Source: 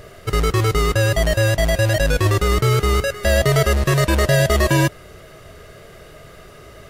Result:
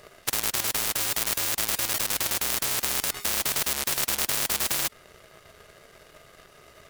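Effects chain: bass shelf 370 Hz -9 dB; hum notches 50/100 Hz; power-law waveshaper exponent 2; spectrum-flattening compressor 10:1; trim +6 dB

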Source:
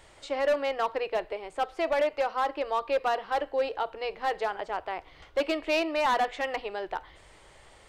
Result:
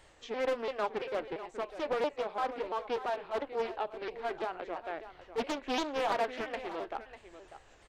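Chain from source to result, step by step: sawtooth pitch modulation -4 st, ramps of 340 ms; delay 596 ms -13 dB; loudspeaker Doppler distortion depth 0.65 ms; trim -4.5 dB

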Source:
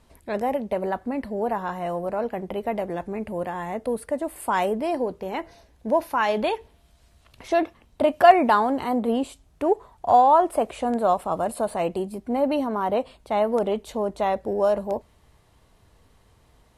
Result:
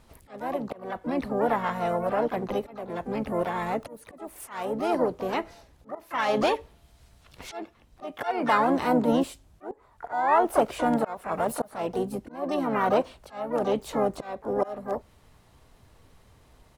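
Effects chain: slow attack 486 ms; harmony voices -7 st -13 dB, +4 st -7 dB, +12 st -12 dB

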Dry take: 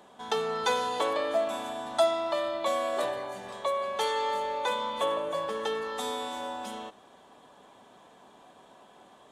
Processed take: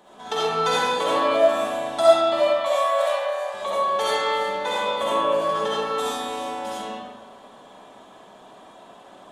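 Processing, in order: 2.41–3.54 s: Chebyshev high-pass 550 Hz, order 4; algorithmic reverb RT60 1.3 s, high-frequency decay 0.65×, pre-delay 25 ms, DRR -8 dB

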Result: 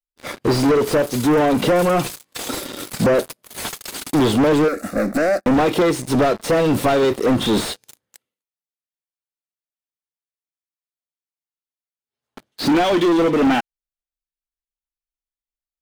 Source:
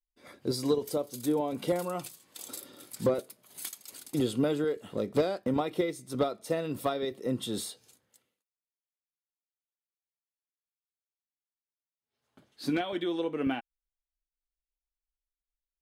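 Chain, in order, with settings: waveshaping leveller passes 5; 4.68–5.46 s: static phaser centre 630 Hz, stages 8; slew-rate limiter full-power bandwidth 160 Hz; trim +4.5 dB

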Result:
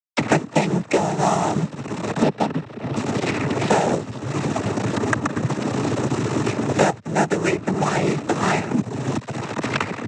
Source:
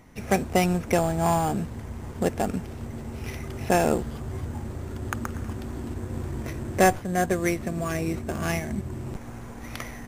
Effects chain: 2.22–2.96 s: Chebyshev low-pass 1.2 kHz; crossover distortion -35.5 dBFS; noise-vocoded speech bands 12; three bands compressed up and down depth 100%; trim +8 dB

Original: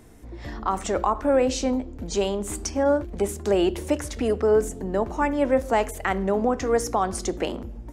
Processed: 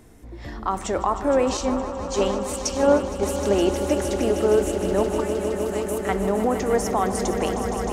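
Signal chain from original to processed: 5.20–6.09 s: differentiator; echo with a slow build-up 155 ms, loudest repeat 5, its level -11 dB; 1.57–3.23 s: three bands expanded up and down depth 100%

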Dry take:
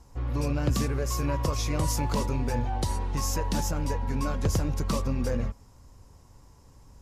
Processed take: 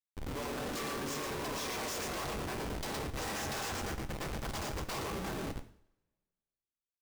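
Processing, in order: 2.93–4.89 s: high-pass 170 Hz 24 dB/octave; on a send: feedback delay 116 ms, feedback 27%, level -4.5 dB; on the sum: spectral gate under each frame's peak -15 dB weak; in parallel at -11.5 dB: saturation -34 dBFS, distortion -11 dB; on the sum: elliptic low-pass 9.4 kHz, stop band 40 dB; Schmitt trigger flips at -37 dBFS; two-slope reverb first 0.54 s, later 1.7 s, from -27 dB, DRR 7.5 dB

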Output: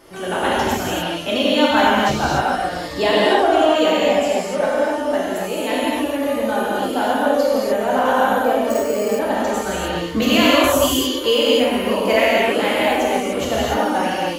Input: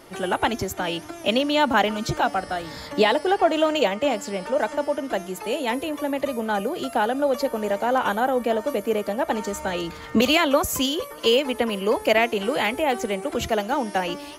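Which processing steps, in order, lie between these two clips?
gated-style reverb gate 320 ms flat, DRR -7.5 dB; 8.70–9.19 s: careless resampling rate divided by 6×, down filtered, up hold; trim -3 dB

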